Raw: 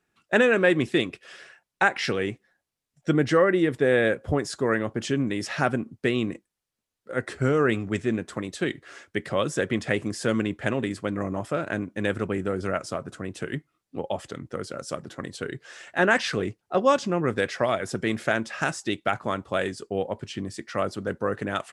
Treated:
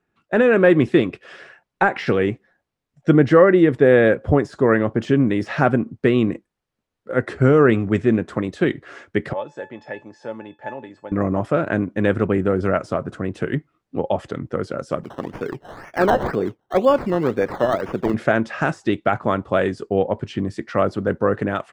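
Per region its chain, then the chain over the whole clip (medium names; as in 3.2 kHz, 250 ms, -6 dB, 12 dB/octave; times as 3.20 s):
9.33–11.12 s: cabinet simulation 150–6800 Hz, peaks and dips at 190 Hz -5 dB, 580 Hz +9 dB, 870 Hz +10 dB + feedback comb 870 Hz, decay 0.21 s, mix 90%
15.03–18.14 s: high-pass 270 Hz 6 dB/octave + decimation with a swept rate 15×, swing 60% 2 Hz
whole clip: de-esser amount 85%; low-pass 1.4 kHz 6 dB/octave; level rider gain up to 5.5 dB; trim +3.5 dB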